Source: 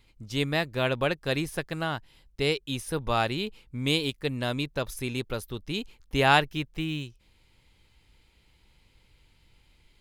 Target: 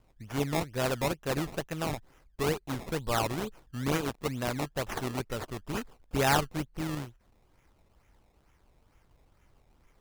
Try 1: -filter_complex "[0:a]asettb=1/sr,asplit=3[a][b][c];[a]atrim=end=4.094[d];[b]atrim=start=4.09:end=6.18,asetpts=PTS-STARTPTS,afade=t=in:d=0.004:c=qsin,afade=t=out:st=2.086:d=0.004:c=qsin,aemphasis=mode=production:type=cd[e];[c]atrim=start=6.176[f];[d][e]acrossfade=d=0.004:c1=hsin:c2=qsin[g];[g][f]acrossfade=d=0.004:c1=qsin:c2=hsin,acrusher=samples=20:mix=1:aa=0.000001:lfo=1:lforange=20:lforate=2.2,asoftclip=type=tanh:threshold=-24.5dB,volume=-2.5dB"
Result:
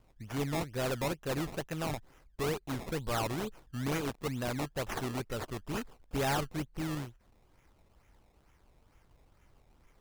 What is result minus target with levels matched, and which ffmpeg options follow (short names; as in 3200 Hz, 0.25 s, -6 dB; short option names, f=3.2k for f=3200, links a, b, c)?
soft clip: distortion +12 dB
-filter_complex "[0:a]asettb=1/sr,asplit=3[a][b][c];[a]atrim=end=4.094[d];[b]atrim=start=4.09:end=6.18,asetpts=PTS-STARTPTS,afade=t=in:d=0.004:c=qsin,afade=t=out:st=2.086:d=0.004:c=qsin,aemphasis=mode=production:type=cd[e];[c]atrim=start=6.176[f];[d][e]acrossfade=d=0.004:c1=hsin:c2=qsin[g];[g][f]acrossfade=d=0.004:c1=qsin:c2=hsin,acrusher=samples=20:mix=1:aa=0.000001:lfo=1:lforange=20:lforate=2.2,asoftclip=type=tanh:threshold=-12.5dB,volume=-2.5dB"